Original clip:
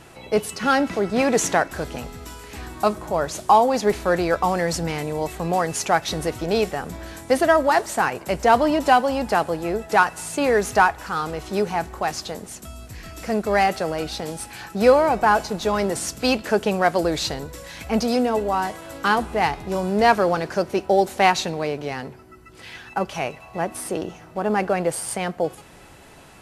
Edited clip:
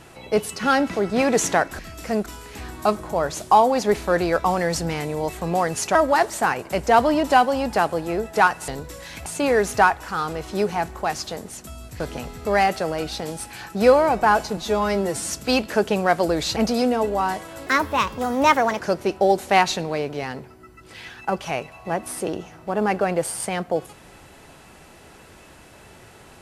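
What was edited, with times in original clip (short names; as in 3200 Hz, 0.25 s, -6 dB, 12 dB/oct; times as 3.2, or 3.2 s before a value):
1.79–2.24 swap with 12.98–13.45
5.93–7.51 cut
15.57–16.06 stretch 1.5×
17.32–17.9 move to 10.24
19–20.48 speed 131%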